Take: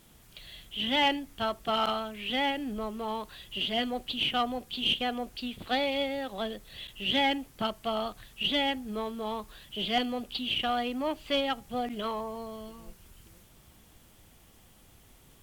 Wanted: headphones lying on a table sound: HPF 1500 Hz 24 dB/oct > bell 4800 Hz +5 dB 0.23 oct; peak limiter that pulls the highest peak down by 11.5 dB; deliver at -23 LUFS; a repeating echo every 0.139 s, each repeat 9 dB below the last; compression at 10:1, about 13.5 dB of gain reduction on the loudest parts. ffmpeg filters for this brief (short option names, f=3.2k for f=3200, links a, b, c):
-af "acompressor=threshold=-36dB:ratio=10,alimiter=level_in=12dB:limit=-24dB:level=0:latency=1,volume=-12dB,highpass=f=1.5k:w=0.5412,highpass=f=1.5k:w=1.3066,equalizer=f=4.8k:t=o:w=0.23:g=5,aecho=1:1:139|278|417|556:0.355|0.124|0.0435|0.0152,volume=24dB"